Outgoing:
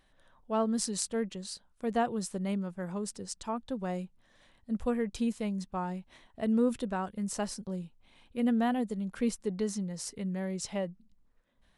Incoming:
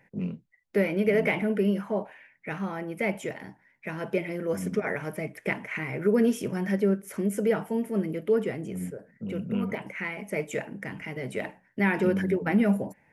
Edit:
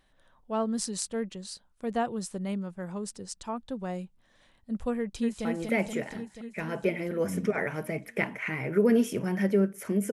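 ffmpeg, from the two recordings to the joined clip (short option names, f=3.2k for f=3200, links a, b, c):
-filter_complex "[0:a]apad=whole_dur=10.12,atrim=end=10.12,atrim=end=5.452[a];[1:a]atrim=start=2.738:end=7.41[b];[a][b]acrossfade=d=0.004:c1=hsin:c2=hsin,asplit=2[c][d];[d]afade=t=in:st=4.98:d=0.01,afade=t=out:st=5.45:d=0.01,aecho=0:1:240|480|720|960|1200|1440|1680|1920|2160|2400|2640|2880:0.630957|0.473218|0.354914|0.266185|0.199639|0.149729|0.112297|0.0842226|0.063167|0.0473752|0.0355314|0.0266486[e];[c][e]amix=inputs=2:normalize=0"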